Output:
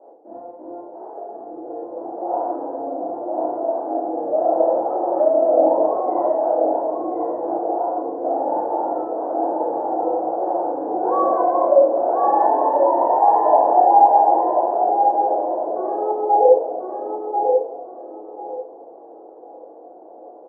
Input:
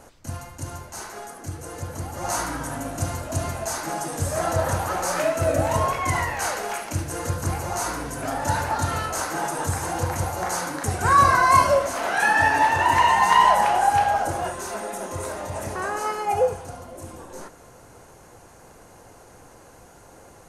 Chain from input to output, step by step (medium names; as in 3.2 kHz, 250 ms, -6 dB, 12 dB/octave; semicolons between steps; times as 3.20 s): Chebyshev band-pass 320–800 Hz, order 3; on a send: feedback delay 1040 ms, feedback 21%, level -5 dB; on the sum: simulated room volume 60 m³, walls mixed, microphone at 2.5 m; trim -2.5 dB